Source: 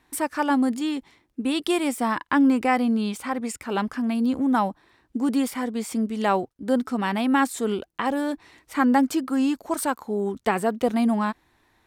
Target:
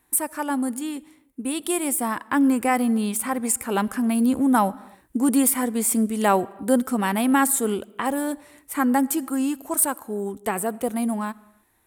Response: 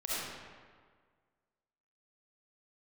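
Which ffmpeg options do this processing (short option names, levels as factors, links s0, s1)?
-filter_complex "[0:a]highshelf=f=7200:t=q:w=1.5:g=13.5,dynaudnorm=f=420:g=11:m=3.76,asplit=2[s0][s1];[1:a]atrim=start_sample=2205,afade=t=out:st=0.38:d=0.01,atrim=end_sample=17199[s2];[s1][s2]afir=irnorm=-1:irlink=0,volume=0.0473[s3];[s0][s3]amix=inputs=2:normalize=0,volume=0.631"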